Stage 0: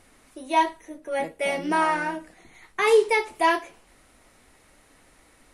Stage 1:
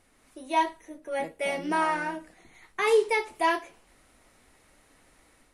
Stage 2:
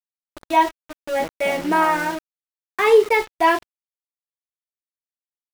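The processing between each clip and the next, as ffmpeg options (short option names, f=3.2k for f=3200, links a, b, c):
-af "dynaudnorm=f=150:g=3:m=4.5dB,volume=-8dB"
-af "aemphasis=mode=reproduction:type=50kf,aeval=exprs='val(0)*gte(abs(val(0)),0.0141)':c=same,anlmdn=0.00398,volume=8.5dB"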